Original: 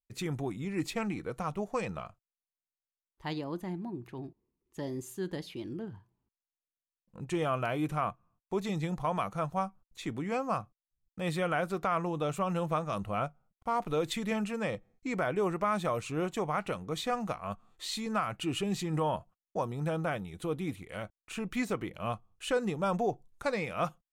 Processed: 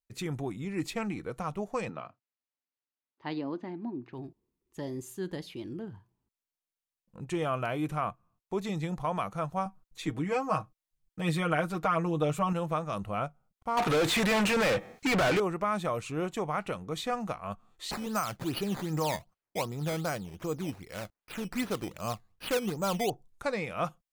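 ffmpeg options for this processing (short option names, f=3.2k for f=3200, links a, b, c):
-filter_complex "[0:a]asettb=1/sr,asplit=3[a][b][c];[a]atrim=end=1.894[d];[b]atrim=start=1.89:end=4.13,asetpts=PTS-STARTPTS,afade=t=in:d=0.004:c=qsin,afade=t=out:st=2.236:d=0.004:c=qsin,highpass=f=130:w=0.5412,highpass=f=130:w=1.3066,equalizer=f=180:t=q:w=4:g=-8,equalizer=f=260:t=q:w=4:g=9,equalizer=f=3.4k:t=q:w=4:g=-4,lowpass=f=4.6k:w=0.5412,lowpass=f=4.6k:w=1.3066[e];[c]atrim=start=4.126[f];[d][e]acrossfade=d=0.004:c1=hsin:c2=qsin[g];[g][f]acrossfade=d=0.004:c1=qsin:c2=hsin,asettb=1/sr,asplit=3[h][i][j];[h]atrim=end=9.654[k];[i]atrim=start=9.65:end=12.53,asetpts=PTS-STARTPTS,afade=t=in:d=0.004:c=qsin,afade=t=out:st=2.876:d=0.004:c=qsin,aecho=1:1:6.4:0.87,atrim=end_sample=127008[l];[j]atrim=start=12.526[m];[k][l]acrossfade=d=0.004:c1=hsin:c2=qsin[n];[n][m]acrossfade=d=0.004:c1=qsin:c2=hsin,asettb=1/sr,asplit=3[o][p][q];[o]atrim=end=13.774[r];[p]atrim=start=13.77:end=15.4,asetpts=PTS-STARTPTS,afade=t=in:d=0.004:c=qsin,afade=t=out:st=1.626:d=0.004:c=qsin,asplit=2[s][t];[t]highpass=f=720:p=1,volume=36dB,asoftclip=type=tanh:threshold=-19.5dB[u];[s][u]amix=inputs=2:normalize=0,lowpass=f=4.4k:p=1,volume=-6dB[v];[q]atrim=start=15.396[w];[r][v]acrossfade=d=0.004:c1=hsin:c2=qsin[x];[x][w]acrossfade=d=0.004:c1=qsin:c2=hsin,asettb=1/sr,asplit=3[y][z][aa];[y]atrim=end=17.914[ab];[z]atrim=start=17.91:end=23.1,asetpts=PTS-STARTPTS,afade=t=in:d=0.004:c=qsin,afade=t=out:st=5.186:d=0.004:c=qsin,acrusher=samples=11:mix=1:aa=0.000001:lfo=1:lforange=11:lforate=2.6[ac];[aa]atrim=start=23.096[ad];[ab][ac]acrossfade=d=0.004:c1=hsin:c2=qsin[ae];[ae][ad]acrossfade=d=0.004:c1=qsin:c2=hsin"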